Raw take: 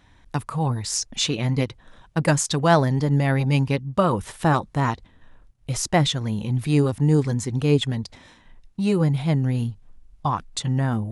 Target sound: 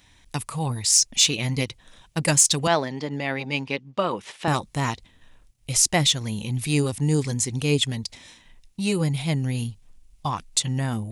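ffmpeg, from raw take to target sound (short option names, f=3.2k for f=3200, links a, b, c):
-filter_complex "[0:a]aexciter=amount=2.7:drive=6.3:freq=2.1k,asettb=1/sr,asplit=3[a][b][c];[a]atrim=end=2.674[d];[b]atrim=start=2.67:end=4.48,asetpts=PTS-STARTPTS,afade=t=in:d=0.004:c=qsin,afade=t=out:st=1.806:d=0.004:c=qsin,highpass=260,lowpass=3.5k[e];[c]atrim=start=4.476[f];[d][e]acrossfade=d=0.004:c1=hsin:c2=qsin[g];[g][f]acrossfade=d=0.004:c1=qsin:c2=hsin,volume=-3.5dB"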